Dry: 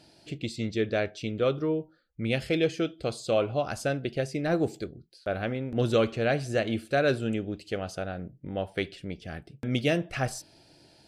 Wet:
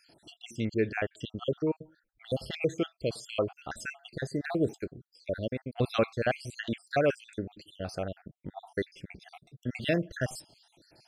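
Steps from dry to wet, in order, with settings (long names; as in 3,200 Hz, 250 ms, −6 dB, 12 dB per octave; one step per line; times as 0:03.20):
time-frequency cells dropped at random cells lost 62%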